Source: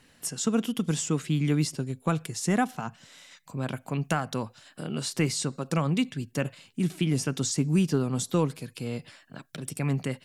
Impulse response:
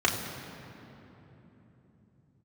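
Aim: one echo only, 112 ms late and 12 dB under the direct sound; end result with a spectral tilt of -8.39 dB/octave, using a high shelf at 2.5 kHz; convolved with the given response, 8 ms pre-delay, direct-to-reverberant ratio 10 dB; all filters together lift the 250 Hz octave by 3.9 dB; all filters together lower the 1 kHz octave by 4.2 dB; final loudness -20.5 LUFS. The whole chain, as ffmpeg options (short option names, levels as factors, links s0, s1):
-filter_complex "[0:a]equalizer=f=250:t=o:g=5.5,equalizer=f=1000:t=o:g=-5.5,highshelf=f=2500:g=-5,aecho=1:1:112:0.251,asplit=2[s0][s1];[1:a]atrim=start_sample=2205,adelay=8[s2];[s1][s2]afir=irnorm=-1:irlink=0,volume=0.0668[s3];[s0][s3]amix=inputs=2:normalize=0,volume=1.78"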